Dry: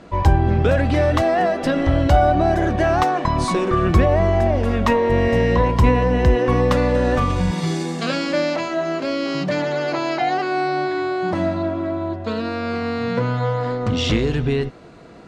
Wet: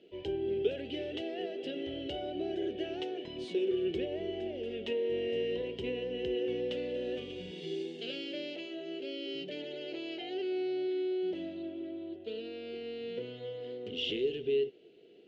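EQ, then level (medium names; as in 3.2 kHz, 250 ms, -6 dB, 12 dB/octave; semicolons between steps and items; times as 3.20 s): two resonant band-passes 1.1 kHz, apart 2.9 oct; -4.5 dB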